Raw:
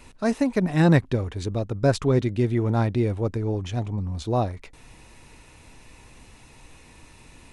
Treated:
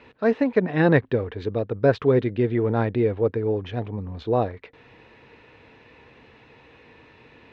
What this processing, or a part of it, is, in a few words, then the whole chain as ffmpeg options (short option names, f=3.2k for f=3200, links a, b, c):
guitar cabinet: -af "highpass=110,equalizer=f=170:t=q:w=4:g=-4,equalizer=f=460:t=q:w=4:g=9,equalizer=f=1.7k:t=q:w=4:g=5,lowpass=f=3.6k:w=0.5412,lowpass=f=3.6k:w=1.3066"